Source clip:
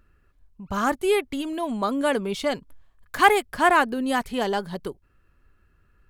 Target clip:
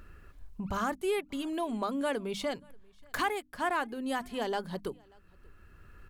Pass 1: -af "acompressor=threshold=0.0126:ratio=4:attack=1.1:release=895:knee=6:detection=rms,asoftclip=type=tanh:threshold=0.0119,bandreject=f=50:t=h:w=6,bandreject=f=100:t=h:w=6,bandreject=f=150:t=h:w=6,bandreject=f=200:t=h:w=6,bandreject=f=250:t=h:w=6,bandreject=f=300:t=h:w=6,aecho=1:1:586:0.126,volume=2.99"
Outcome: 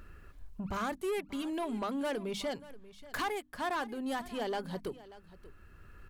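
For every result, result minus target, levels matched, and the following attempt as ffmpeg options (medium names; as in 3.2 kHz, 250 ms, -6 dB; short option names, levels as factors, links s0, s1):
saturation: distortion +17 dB; echo-to-direct +10.5 dB
-af "acompressor=threshold=0.0126:ratio=4:attack=1.1:release=895:knee=6:detection=rms,asoftclip=type=tanh:threshold=0.0447,bandreject=f=50:t=h:w=6,bandreject=f=100:t=h:w=6,bandreject=f=150:t=h:w=6,bandreject=f=200:t=h:w=6,bandreject=f=250:t=h:w=6,bandreject=f=300:t=h:w=6,aecho=1:1:586:0.126,volume=2.99"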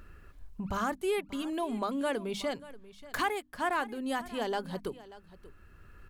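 echo-to-direct +10.5 dB
-af "acompressor=threshold=0.0126:ratio=4:attack=1.1:release=895:knee=6:detection=rms,asoftclip=type=tanh:threshold=0.0447,bandreject=f=50:t=h:w=6,bandreject=f=100:t=h:w=6,bandreject=f=150:t=h:w=6,bandreject=f=200:t=h:w=6,bandreject=f=250:t=h:w=6,bandreject=f=300:t=h:w=6,aecho=1:1:586:0.0376,volume=2.99"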